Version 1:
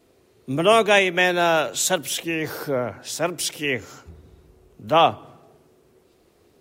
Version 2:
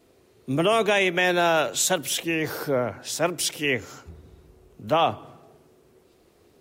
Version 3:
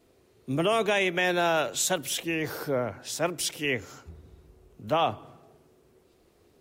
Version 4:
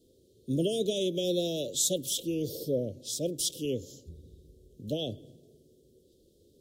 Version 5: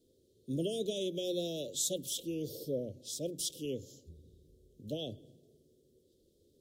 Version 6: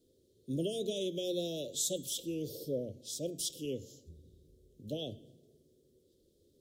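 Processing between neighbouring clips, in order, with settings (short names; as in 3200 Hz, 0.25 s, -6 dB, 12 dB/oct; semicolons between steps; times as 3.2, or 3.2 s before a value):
limiter -11 dBFS, peak gain reduction 7 dB
low shelf 65 Hz +5.5 dB; gain -4 dB
Chebyshev band-stop 550–3300 Hz, order 4
notches 60/120/180 Hz; gain -6 dB
de-hum 223.9 Hz, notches 38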